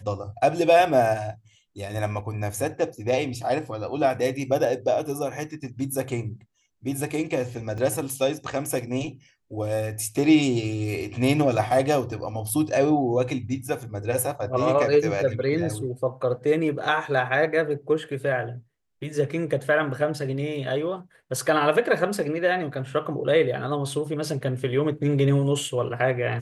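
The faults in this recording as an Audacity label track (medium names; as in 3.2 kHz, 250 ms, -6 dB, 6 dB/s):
7.780000	7.780000	dropout 3.9 ms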